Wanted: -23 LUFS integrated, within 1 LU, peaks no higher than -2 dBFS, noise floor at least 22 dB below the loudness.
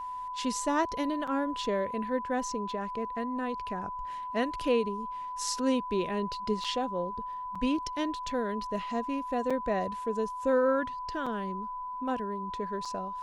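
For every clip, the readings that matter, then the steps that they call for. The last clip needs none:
dropouts 6; longest dropout 5.3 ms; steady tone 1 kHz; tone level -35 dBFS; loudness -32.0 LUFS; peak level -15.5 dBFS; loudness target -23.0 LUFS
-> interpolate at 1.27/6.64/7.55/9.50/11.26/12.85 s, 5.3 ms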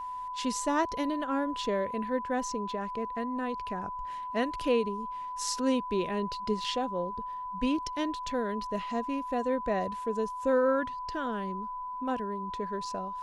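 dropouts 0; steady tone 1 kHz; tone level -35 dBFS
-> band-stop 1 kHz, Q 30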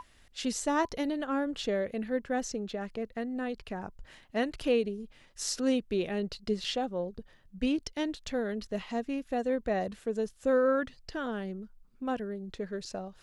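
steady tone not found; loudness -33.0 LUFS; peak level -16.5 dBFS; loudness target -23.0 LUFS
-> trim +10 dB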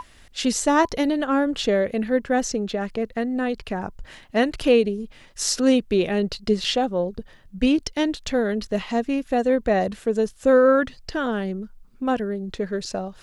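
loudness -23.0 LUFS; peak level -6.5 dBFS; noise floor -51 dBFS

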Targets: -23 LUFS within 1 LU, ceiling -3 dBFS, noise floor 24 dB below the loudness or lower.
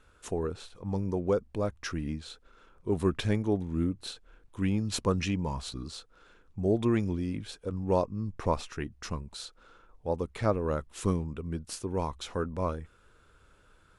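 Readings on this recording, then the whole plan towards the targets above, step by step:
loudness -32.0 LUFS; peak level -13.5 dBFS; loudness target -23.0 LUFS
-> trim +9 dB

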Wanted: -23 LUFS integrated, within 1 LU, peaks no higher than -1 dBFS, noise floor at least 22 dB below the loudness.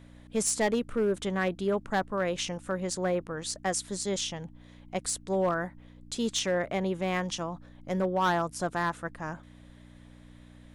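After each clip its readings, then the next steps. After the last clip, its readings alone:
clipped samples 0.6%; clipping level -20.5 dBFS; hum 60 Hz; highest harmonic 300 Hz; hum level -51 dBFS; loudness -30.5 LUFS; peak level -20.5 dBFS; loudness target -23.0 LUFS
-> clip repair -20.5 dBFS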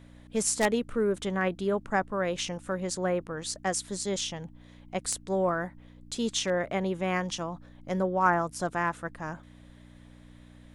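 clipped samples 0.0%; hum 60 Hz; highest harmonic 300 Hz; hum level -51 dBFS
-> de-hum 60 Hz, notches 5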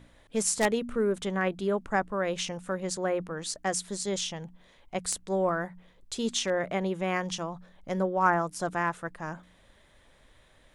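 hum not found; loudness -30.0 LUFS; peak level -11.0 dBFS; loudness target -23.0 LUFS
-> trim +7 dB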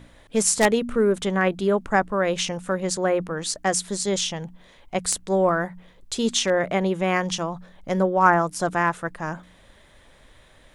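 loudness -23.0 LUFS; peak level -4.0 dBFS; noise floor -53 dBFS

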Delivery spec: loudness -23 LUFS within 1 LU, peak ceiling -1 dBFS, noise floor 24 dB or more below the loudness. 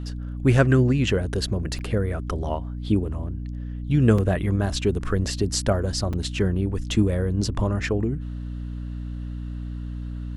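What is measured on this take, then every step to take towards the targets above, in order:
dropouts 3; longest dropout 4.6 ms; hum 60 Hz; highest harmonic 300 Hz; hum level -29 dBFS; loudness -24.5 LUFS; peak level -4.5 dBFS; loudness target -23.0 LUFS
-> interpolate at 1.79/4.18/6.13 s, 4.6 ms; de-hum 60 Hz, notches 5; trim +1.5 dB

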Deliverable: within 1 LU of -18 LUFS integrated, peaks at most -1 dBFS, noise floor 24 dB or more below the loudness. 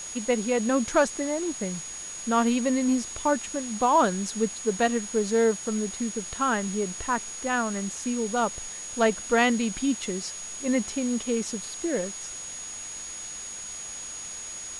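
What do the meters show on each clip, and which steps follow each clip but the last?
steady tone 6.7 kHz; tone level -36 dBFS; noise floor -38 dBFS; noise floor target -51 dBFS; loudness -27.0 LUFS; peak level -8.5 dBFS; loudness target -18.0 LUFS
-> band-stop 6.7 kHz, Q 30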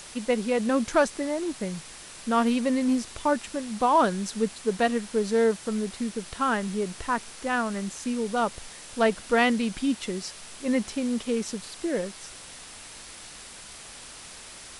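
steady tone not found; noise floor -45 dBFS; noise floor target -51 dBFS
-> noise reduction 6 dB, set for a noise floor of -45 dBFS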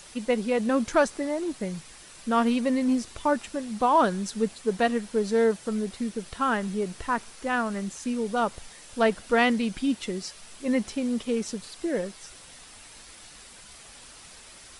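noise floor -48 dBFS; noise floor target -51 dBFS
-> noise reduction 6 dB, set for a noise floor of -48 dBFS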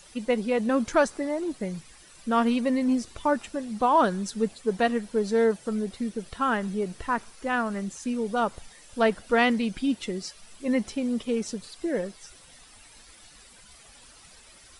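noise floor -52 dBFS; loudness -27.0 LUFS; peak level -8.5 dBFS; loudness target -18.0 LUFS
-> trim +9 dB; peak limiter -1 dBFS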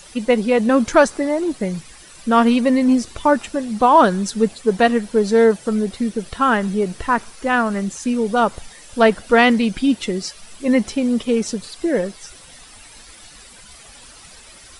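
loudness -18.0 LUFS; peak level -1.0 dBFS; noise floor -43 dBFS

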